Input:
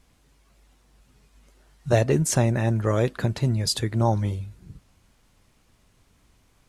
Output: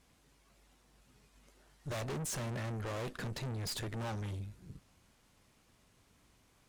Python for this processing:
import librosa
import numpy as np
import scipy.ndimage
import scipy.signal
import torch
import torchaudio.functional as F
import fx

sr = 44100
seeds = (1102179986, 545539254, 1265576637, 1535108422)

y = fx.low_shelf(x, sr, hz=75.0, db=-9.0)
y = fx.tube_stage(y, sr, drive_db=36.0, bias=0.6)
y = y * 10.0 ** (-1.0 / 20.0)